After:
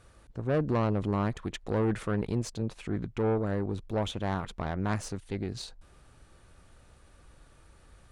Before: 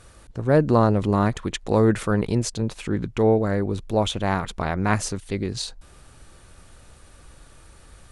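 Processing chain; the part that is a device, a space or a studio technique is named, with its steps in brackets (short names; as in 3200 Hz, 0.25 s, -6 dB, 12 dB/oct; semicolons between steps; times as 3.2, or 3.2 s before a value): tube preamp driven hard (tube stage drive 16 dB, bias 0.45; high shelf 4000 Hz -6.5 dB); gain -5.5 dB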